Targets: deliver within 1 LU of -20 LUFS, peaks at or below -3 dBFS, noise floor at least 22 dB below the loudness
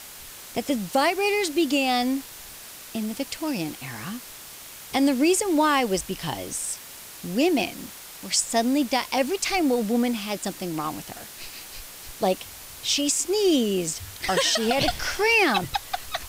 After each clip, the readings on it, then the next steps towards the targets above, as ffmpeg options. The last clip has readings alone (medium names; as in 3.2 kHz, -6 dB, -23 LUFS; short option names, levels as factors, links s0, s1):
noise floor -42 dBFS; noise floor target -46 dBFS; loudness -24.0 LUFS; peak level -11.0 dBFS; loudness target -20.0 LUFS
-> -af "afftdn=nr=6:nf=-42"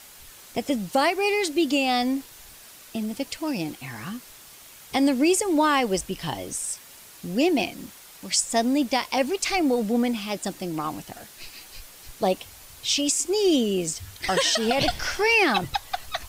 noise floor -47 dBFS; loudness -24.0 LUFS; peak level -11.0 dBFS; loudness target -20.0 LUFS
-> -af "volume=1.58"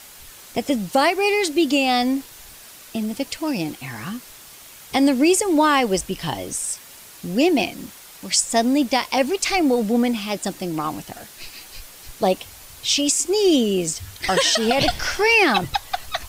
loudness -20.0 LUFS; peak level -7.0 dBFS; noise floor -43 dBFS